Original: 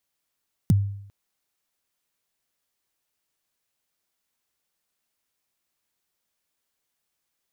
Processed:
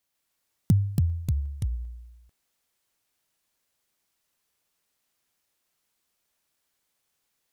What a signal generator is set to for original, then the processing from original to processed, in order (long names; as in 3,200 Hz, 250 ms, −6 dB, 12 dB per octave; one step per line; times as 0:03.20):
synth kick length 0.40 s, from 220 Hz, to 100 Hz, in 23 ms, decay 0.70 s, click on, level −12 dB
delay with pitch and tempo change per echo 148 ms, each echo −3 semitones, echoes 3